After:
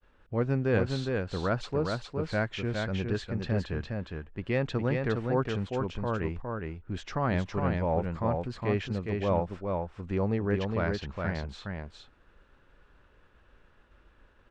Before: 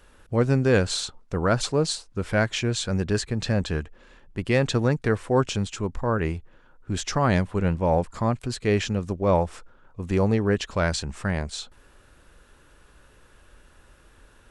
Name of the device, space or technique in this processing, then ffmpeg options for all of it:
hearing-loss simulation: -filter_complex "[0:a]asettb=1/sr,asplit=3[a][b][c];[a]atrim=end=10.634[d];[b]atrim=start=10.63:end=11.29,asetpts=PTS-STARTPTS,afade=t=in:d=0.004:c=qsin,afade=t=out:st=0.656:d=0.004:c=qsin,lowpass=f=6.6k:w=0.5412,lowpass=f=6.6k:w=1.3066[e];[c]atrim=start=11.286[f];[d][e]acrossfade=d=0.004:c1=hsin:c2=qsin[g];[g][f]acrossfade=d=0.004:c1=qsin:c2=hsin,lowpass=3.1k,aecho=1:1:411:0.631,agate=range=-33dB:threshold=-51dB:ratio=3:detection=peak,volume=-7dB"

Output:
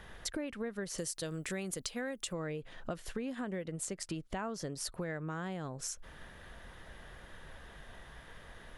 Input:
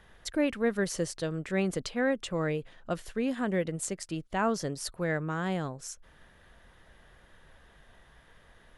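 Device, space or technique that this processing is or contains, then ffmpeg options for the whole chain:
serial compression, leveller first: -filter_complex "[0:a]asettb=1/sr,asplit=3[a][b][c];[a]atrim=end=0.984[d];[b]atrim=start=0.98:end=2.33,asetpts=PTS-STARTPTS,afade=t=in:d=0.004:c=qsin,afade=t=out:st=1.346:d=0.004:c=qsin,aemphasis=mode=production:type=75fm[e];[c]atrim=start=2.326[f];[d][e]acrossfade=d=0.004:c1=hsin:c2=qsin[g];[g][f]acrossfade=d=0.004:c1=qsin:c2=hsin,acompressor=threshold=-38dB:ratio=1.5,acompressor=threshold=-42dB:ratio=6,volume=6dB"

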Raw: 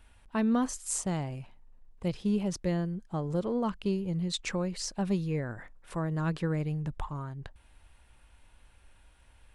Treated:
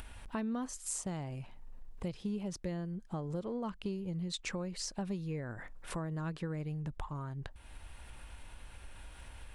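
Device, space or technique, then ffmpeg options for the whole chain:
upward and downward compression: -af "acompressor=mode=upward:threshold=-48dB:ratio=2.5,acompressor=threshold=-46dB:ratio=3,volume=6dB"

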